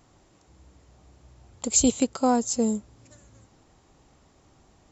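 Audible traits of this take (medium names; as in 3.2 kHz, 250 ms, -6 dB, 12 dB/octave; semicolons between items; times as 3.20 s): noise floor -61 dBFS; spectral tilt -3.0 dB/octave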